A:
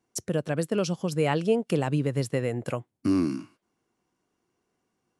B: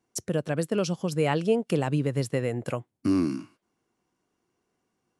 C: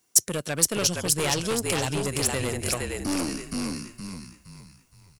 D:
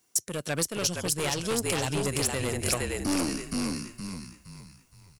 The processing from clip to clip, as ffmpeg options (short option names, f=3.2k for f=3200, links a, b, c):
-af anull
-filter_complex "[0:a]asplit=6[a][b][c][d][e][f];[b]adelay=467,afreqshift=-43,volume=-4dB[g];[c]adelay=934,afreqshift=-86,volume=-12.6dB[h];[d]adelay=1401,afreqshift=-129,volume=-21.3dB[i];[e]adelay=1868,afreqshift=-172,volume=-29.9dB[j];[f]adelay=2335,afreqshift=-215,volume=-38.5dB[k];[a][g][h][i][j][k]amix=inputs=6:normalize=0,aeval=exprs='(tanh(14.1*val(0)+0.35)-tanh(0.35))/14.1':c=same,crystalizer=i=8.5:c=0,volume=-1dB"
-af "alimiter=limit=-12.5dB:level=0:latency=1:release=378"